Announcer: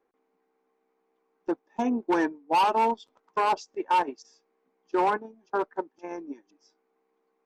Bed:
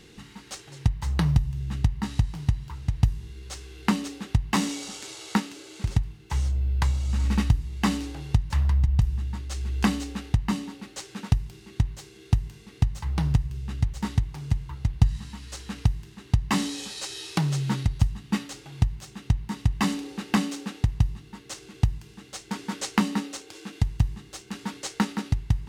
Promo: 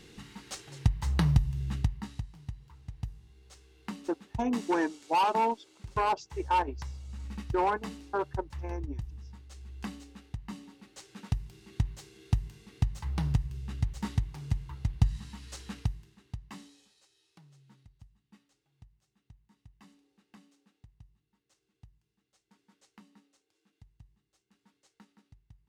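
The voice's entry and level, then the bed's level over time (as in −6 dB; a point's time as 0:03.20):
2.60 s, −3.5 dB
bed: 0:01.72 −2.5 dB
0:02.29 −16.5 dB
0:10.35 −16.5 dB
0:11.75 −5.5 dB
0:15.69 −5.5 dB
0:17.11 −33.5 dB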